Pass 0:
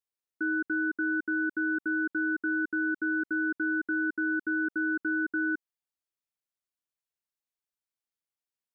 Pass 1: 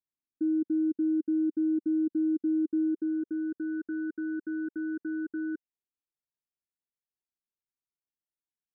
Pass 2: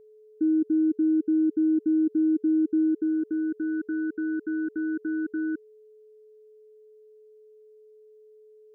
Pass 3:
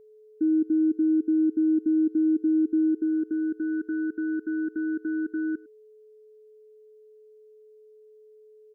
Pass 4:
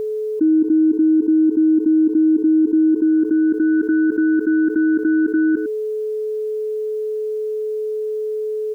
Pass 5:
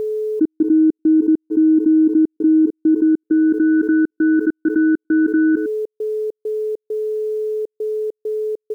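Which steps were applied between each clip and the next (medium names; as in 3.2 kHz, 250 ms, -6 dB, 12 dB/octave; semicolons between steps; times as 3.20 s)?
low-pass sweep 310 Hz -> 810 Hz, 2.65–3.81 s; high-order bell 810 Hz -14 dB; trim -2 dB
whistle 430 Hz -55 dBFS; trim +4.5 dB
echo from a far wall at 18 m, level -23 dB
level flattener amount 70%; trim +7.5 dB
trance gate "xxx.xx.xx.xx" 100 bpm -60 dB; trim +1.5 dB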